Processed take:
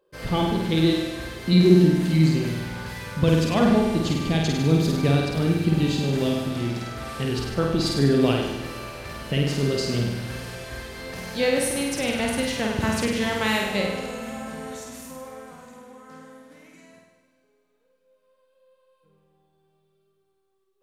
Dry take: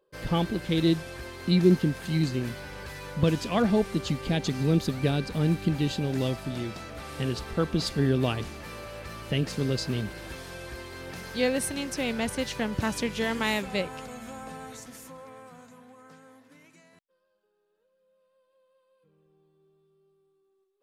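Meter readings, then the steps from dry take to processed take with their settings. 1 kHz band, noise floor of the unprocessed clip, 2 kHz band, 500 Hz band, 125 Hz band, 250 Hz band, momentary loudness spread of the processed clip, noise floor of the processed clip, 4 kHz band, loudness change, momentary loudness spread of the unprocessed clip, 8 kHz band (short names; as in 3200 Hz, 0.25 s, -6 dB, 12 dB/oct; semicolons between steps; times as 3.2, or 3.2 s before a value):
+5.0 dB, -73 dBFS, +5.0 dB, +5.5 dB, +5.5 dB, +5.5 dB, 16 LU, -69 dBFS, +5.0 dB, +5.0 dB, 15 LU, +5.0 dB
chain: flutter echo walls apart 8.6 m, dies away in 0.99 s; Schroeder reverb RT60 3.1 s, combs from 26 ms, DRR 14.5 dB; gain +2 dB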